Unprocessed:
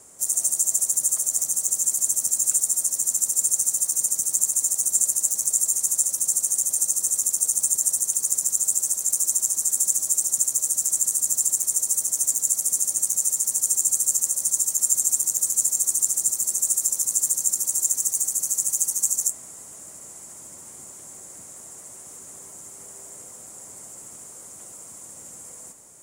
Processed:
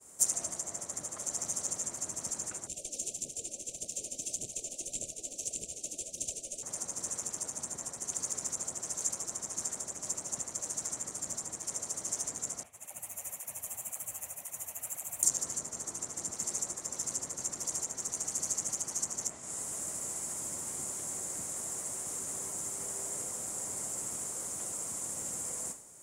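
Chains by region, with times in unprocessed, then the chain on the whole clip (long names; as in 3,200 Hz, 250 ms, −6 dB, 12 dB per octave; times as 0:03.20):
0:02.67–0:06.63: low-shelf EQ 170 Hz −11 dB + phase shifter 1.7 Hz, delay 4 ms, feedback 47% + inverse Chebyshev band-stop filter 910–1,900 Hz
0:12.63–0:15.23: drawn EQ curve 100 Hz 0 dB, 150 Hz −4 dB, 370 Hz −11 dB, 690 Hz +3 dB, 1,400 Hz −3 dB, 2,600 Hz +6 dB, 5,100 Hz −23 dB, 8,700 Hz −21 dB, 13,000 Hz −7 dB + through-zero flanger with one copy inverted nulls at 1.9 Hz, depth 7.8 ms
whole clip: treble cut that deepens with the level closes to 2,100 Hz, closed at −17.5 dBFS; downward expander −42 dBFS; level +4 dB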